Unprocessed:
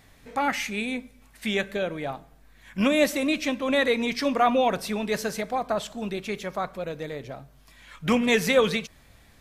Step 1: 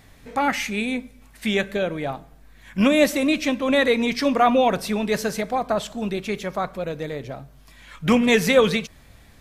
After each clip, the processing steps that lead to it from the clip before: low shelf 370 Hz +3 dB; gain +3 dB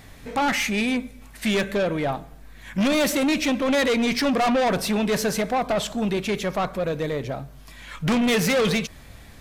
soft clip -23 dBFS, distortion -7 dB; gain +5 dB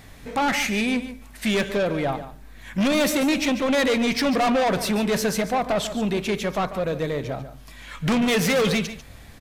echo 0.144 s -12.5 dB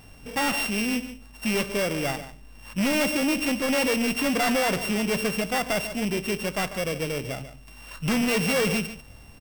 sample sorter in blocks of 16 samples; gain -3 dB

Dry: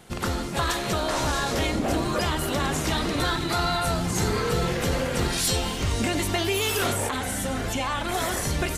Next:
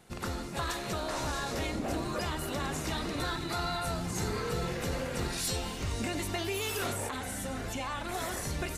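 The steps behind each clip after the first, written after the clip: notch 3200 Hz, Q 17; gain -8.5 dB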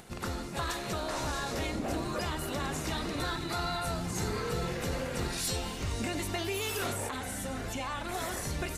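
upward compressor, threshold -45 dBFS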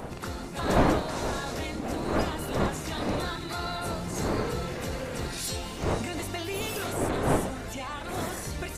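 wind noise 580 Hz -32 dBFS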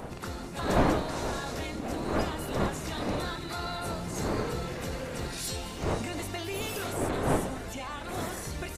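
echo 0.214 s -18 dB; gain -2 dB

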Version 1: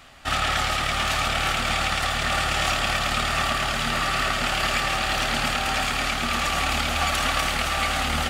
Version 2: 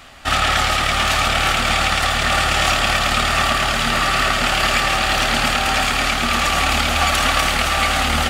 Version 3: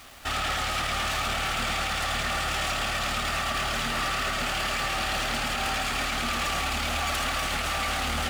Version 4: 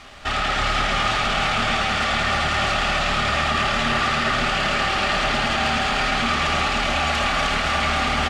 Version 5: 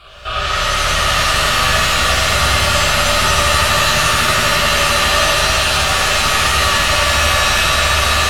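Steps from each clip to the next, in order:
bell 140 Hz -3.5 dB 0.32 oct; gain +6.5 dB
limiter -10 dBFS, peak gain reduction 7 dB; hard clip -17.5 dBFS, distortion -13 dB; bit-crush 7-bit; gain -6.5 dB
air absorption 94 m; echo 0.307 s -4.5 dB; on a send at -6.5 dB: reverb RT60 1.6 s, pre-delay 5 ms; on the sum: gain +6 dB
fixed phaser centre 1300 Hz, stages 8; soft clip -17 dBFS, distortion -19 dB; shimmer reverb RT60 2.2 s, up +7 st, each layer -2 dB, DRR -5 dB; gain +2 dB

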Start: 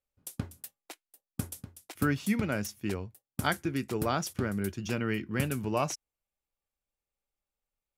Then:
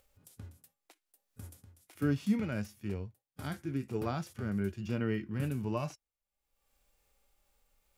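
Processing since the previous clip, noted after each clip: harmonic-percussive split percussive -18 dB; upward compressor, threshold -54 dBFS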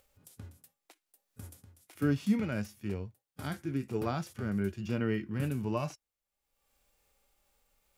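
low shelf 61 Hz -6 dB; gain +2 dB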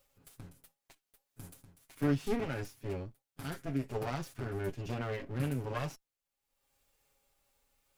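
minimum comb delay 7.3 ms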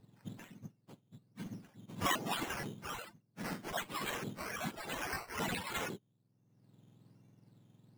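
spectrum mirrored in octaves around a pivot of 1500 Hz; decimation with a swept rate 10×, swing 60% 1.2 Hz; gain +2.5 dB

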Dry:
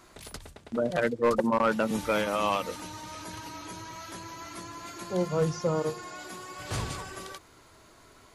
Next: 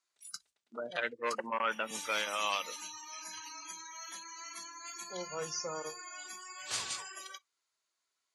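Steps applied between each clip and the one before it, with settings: spectral noise reduction 27 dB; weighting filter ITU-R 468; gain -7 dB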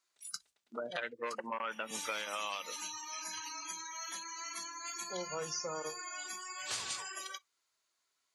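compressor 6:1, threshold -38 dBFS, peak gain reduction 10.5 dB; gain +3 dB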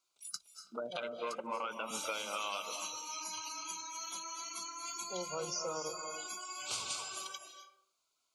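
Butterworth band-stop 1800 Hz, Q 2.3; reverb RT60 0.65 s, pre-delay 0.201 s, DRR 6.5 dB

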